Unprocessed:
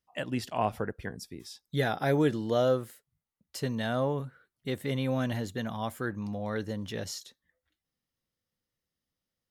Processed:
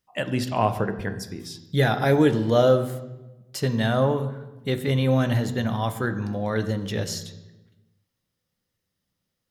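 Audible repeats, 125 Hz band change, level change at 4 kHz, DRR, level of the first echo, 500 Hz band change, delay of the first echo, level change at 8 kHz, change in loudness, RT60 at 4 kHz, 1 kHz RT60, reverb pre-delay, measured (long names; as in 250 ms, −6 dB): no echo audible, +10.0 dB, +7.0 dB, 9.0 dB, no echo audible, +7.5 dB, no echo audible, +6.5 dB, +7.5 dB, 0.80 s, 1.0 s, 3 ms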